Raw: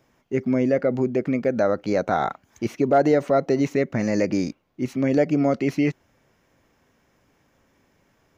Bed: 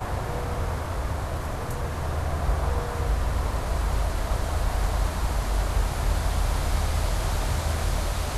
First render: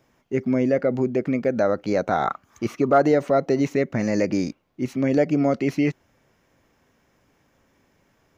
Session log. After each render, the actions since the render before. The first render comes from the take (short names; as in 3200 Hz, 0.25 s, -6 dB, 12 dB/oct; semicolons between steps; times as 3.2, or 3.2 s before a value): 2.26–3.05 bell 1200 Hz +13.5 dB 0.29 oct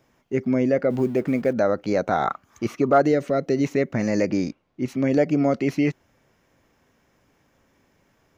0.9–1.53 G.711 law mismatch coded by mu; 3.01–3.64 bell 900 Hz -11 dB 0.81 oct; 4.31–4.88 air absorption 50 m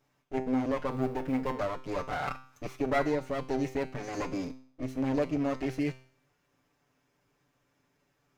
minimum comb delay 6.9 ms; resonator 130 Hz, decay 0.52 s, harmonics all, mix 70%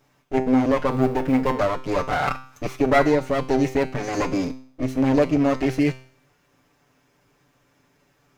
gain +10.5 dB